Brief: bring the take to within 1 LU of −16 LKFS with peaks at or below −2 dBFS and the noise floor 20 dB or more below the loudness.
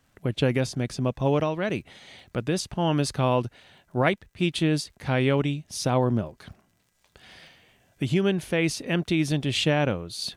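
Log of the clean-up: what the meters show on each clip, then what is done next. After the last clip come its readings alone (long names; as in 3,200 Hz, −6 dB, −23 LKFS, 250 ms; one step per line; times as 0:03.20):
crackle rate 47 per second; integrated loudness −26.0 LKFS; sample peak −8.0 dBFS; target loudness −16.0 LKFS
→ click removal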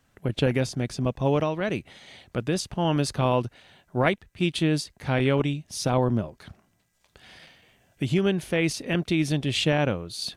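crackle rate 0.29 per second; integrated loudness −26.0 LKFS; sample peak −8.0 dBFS; target loudness −16.0 LKFS
→ level +10 dB
brickwall limiter −2 dBFS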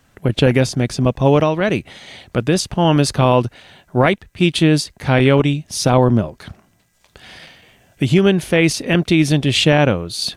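integrated loudness −16.0 LKFS; sample peak −2.0 dBFS; background noise floor −58 dBFS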